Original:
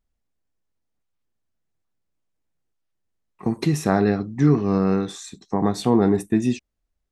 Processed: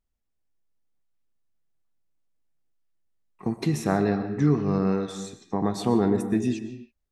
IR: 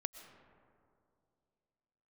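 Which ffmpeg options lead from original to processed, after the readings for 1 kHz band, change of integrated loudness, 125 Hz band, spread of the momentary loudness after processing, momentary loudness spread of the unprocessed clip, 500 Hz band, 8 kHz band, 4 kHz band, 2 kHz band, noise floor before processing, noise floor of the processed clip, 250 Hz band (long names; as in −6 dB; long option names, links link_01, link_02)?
−4.0 dB, −4.0 dB, −4.0 dB, 12 LU, 11 LU, −4.0 dB, −4.0 dB, −4.0 dB, −4.0 dB, −77 dBFS, −78 dBFS, −4.0 dB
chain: -filter_complex "[1:a]atrim=start_sample=2205,afade=type=out:start_time=0.38:duration=0.01,atrim=end_sample=17199[link_01];[0:a][link_01]afir=irnorm=-1:irlink=0,volume=-2.5dB"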